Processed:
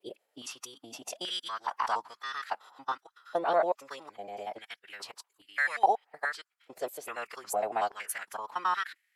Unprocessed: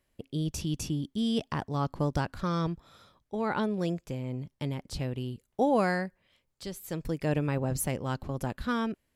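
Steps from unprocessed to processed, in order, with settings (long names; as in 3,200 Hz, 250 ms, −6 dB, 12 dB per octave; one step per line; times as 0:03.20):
slices reordered back to front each 93 ms, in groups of 4
phase-vocoder pitch shift with formants kept −4 semitones
high-pass on a step sequencer 2.4 Hz 610–1,900 Hz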